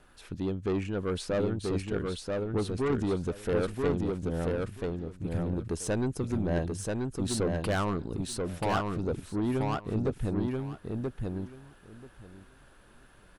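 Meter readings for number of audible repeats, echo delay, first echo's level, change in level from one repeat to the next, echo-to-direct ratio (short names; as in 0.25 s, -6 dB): 3, 0.984 s, -3.0 dB, -16.0 dB, -3.0 dB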